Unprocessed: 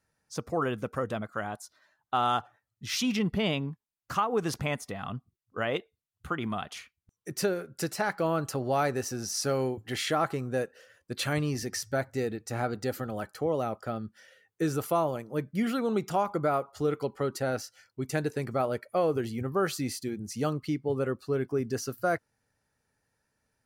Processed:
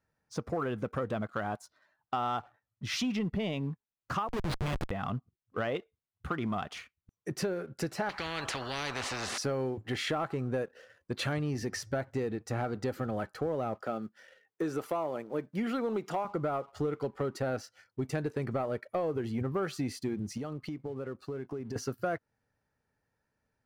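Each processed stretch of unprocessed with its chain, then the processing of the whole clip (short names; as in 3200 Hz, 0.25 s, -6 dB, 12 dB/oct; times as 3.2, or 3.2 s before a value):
4.28–4.91 EQ curve 140 Hz 0 dB, 550 Hz -5 dB, 2600 Hz +2 dB, 3900 Hz +14 dB, 5900 Hz -7 dB, 10000 Hz +8 dB + Schmitt trigger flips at -30.5 dBFS
8.09–9.38 LPF 3700 Hz + spectral compressor 10:1
13.81–16.25 block floating point 7-bit + HPF 240 Hz
20.37–21.76 HPF 71 Hz 6 dB/oct + compressor 8:1, threshold -38 dBFS
whole clip: LPF 2200 Hz 6 dB/oct; compressor, threshold -32 dBFS; sample leveller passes 1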